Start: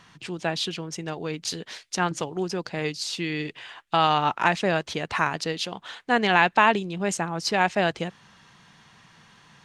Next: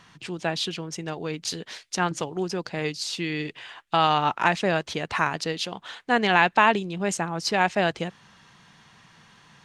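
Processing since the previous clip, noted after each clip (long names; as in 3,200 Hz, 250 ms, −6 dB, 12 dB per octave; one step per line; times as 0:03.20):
no processing that can be heard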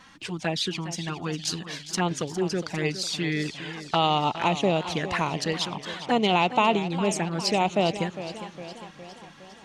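in parallel at −1.5 dB: downward compressor 6 to 1, threshold −30 dBFS, peak gain reduction 16 dB
on the sum: flanger swept by the level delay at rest 4.1 ms, full sweep at −19 dBFS
feedback echo with a swinging delay time 408 ms, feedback 59%, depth 123 cents, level −12.5 dB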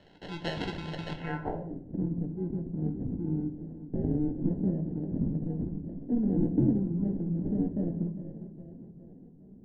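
decimation without filtering 37×
low-pass filter sweep 3,700 Hz → 250 Hz, 0:01.13–0:01.78
rectangular room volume 120 cubic metres, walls mixed, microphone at 0.45 metres
level −7.5 dB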